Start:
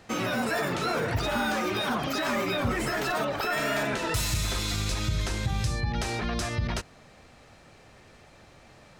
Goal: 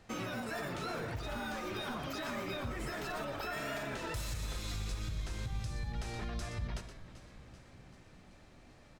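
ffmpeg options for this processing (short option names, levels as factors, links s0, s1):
-filter_complex "[0:a]lowshelf=f=74:g=11.5,asplit=2[s0][s1];[s1]aecho=0:1:121:0.266[s2];[s0][s2]amix=inputs=2:normalize=0,alimiter=limit=0.0891:level=0:latency=1:release=412,asplit=2[s3][s4];[s4]asplit=7[s5][s6][s7][s8][s9][s10][s11];[s5]adelay=386,afreqshift=-60,volume=0.178[s12];[s6]adelay=772,afreqshift=-120,volume=0.116[s13];[s7]adelay=1158,afreqshift=-180,volume=0.075[s14];[s8]adelay=1544,afreqshift=-240,volume=0.049[s15];[s9]adelay=1930,afreqshift=-300,volume=0.0316[s16];[s10]adelay=2316,afreqshift=-360,volume=0.0207[s17];[s11]adelay=2702,afreqshift=-420,volume=0.0133[s18];[s12][s13][s14][s15][s16][s17][s18]amix=inputs=7:normalize=0[s19];[s3][s19]amix=inputs=2:normalize=0,volume=0.355"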